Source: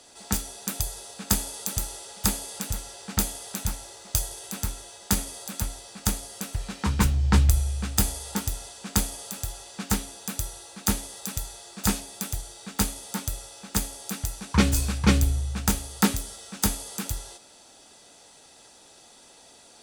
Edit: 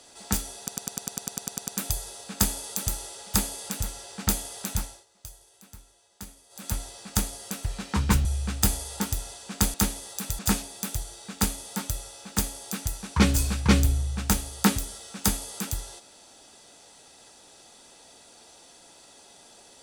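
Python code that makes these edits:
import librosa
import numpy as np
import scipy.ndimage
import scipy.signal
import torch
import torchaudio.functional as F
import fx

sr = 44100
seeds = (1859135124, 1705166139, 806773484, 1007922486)

y = fx.edit(x, sr, fx.stutter(start_s=0.58, slice_s=0.1, count=12),
    fx.fade_down_up(start_s=3.7, length_s=1.94, db=-18.0, fade_s=0.25),
    fx.cut(start_s=7.15, length_s=0.45),
    fx.cut(start_s=9.09, length_s=1.72),
    fx.cut(start_s=11.46, length_s=0.31), tone=tone)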